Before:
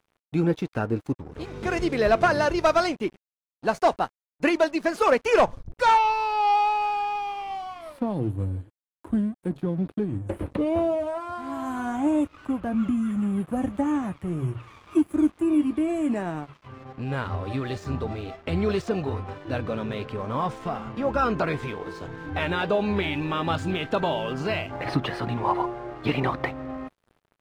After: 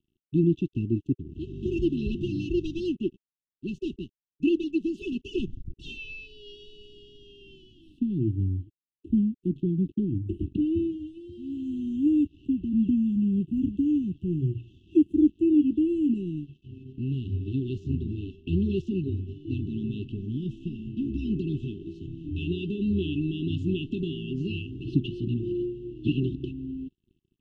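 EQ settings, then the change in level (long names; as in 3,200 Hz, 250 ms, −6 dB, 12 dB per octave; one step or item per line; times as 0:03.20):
linear-phase brick-wall band-stop 400–2,600 Hz
high-frequency loss of the air 200 metres
parametric band 4,600 Hz −13 dB 0.68 octaves
+1.5 dB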